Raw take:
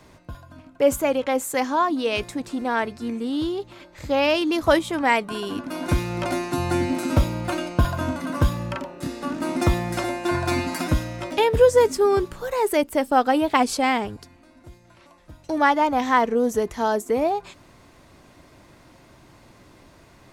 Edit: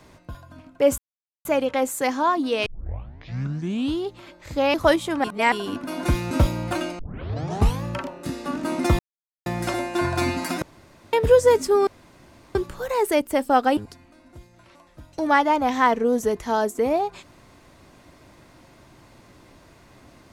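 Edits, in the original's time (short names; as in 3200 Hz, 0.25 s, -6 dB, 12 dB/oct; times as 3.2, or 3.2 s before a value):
0.98 insert silence 0.47 s
2.19 tape start 1.33 s
4.27–4.57 cut
5.07–5.35 reverse
6.14–7.08 cut
7.76 tape start 0.85 s
9.76 insert silence 0.47 s
10.92–11.43 room tone
12.17 insert room tone 0.68 s
13.39–14.08 cut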